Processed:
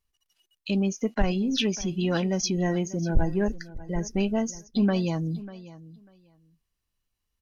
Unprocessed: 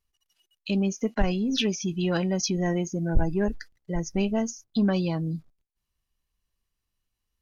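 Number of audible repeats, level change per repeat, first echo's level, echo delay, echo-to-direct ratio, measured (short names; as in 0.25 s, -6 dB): 2, -15.5 dB, -17.5 dB, 0.594 s, -17.5 dB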